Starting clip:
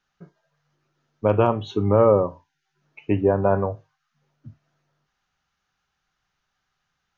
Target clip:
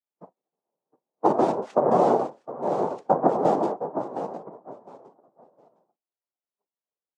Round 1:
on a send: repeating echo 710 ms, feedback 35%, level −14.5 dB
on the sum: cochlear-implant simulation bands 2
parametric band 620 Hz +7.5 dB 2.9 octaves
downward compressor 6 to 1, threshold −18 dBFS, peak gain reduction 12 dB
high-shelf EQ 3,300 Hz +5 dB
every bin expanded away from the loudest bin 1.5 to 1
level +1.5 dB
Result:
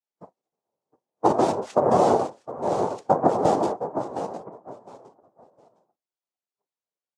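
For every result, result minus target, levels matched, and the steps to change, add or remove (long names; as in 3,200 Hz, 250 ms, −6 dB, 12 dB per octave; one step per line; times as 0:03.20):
8,000 Hz band +10.0 dB; 125 Hz band +2.5 dB
change: high-shelf EQ 3,300 Hz −3.5 dB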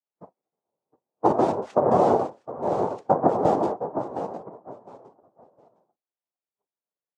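125 Hz band +2.5 dB
add after cochlear-implant simulation: high-pass filter 130 Hz 24 dB per octave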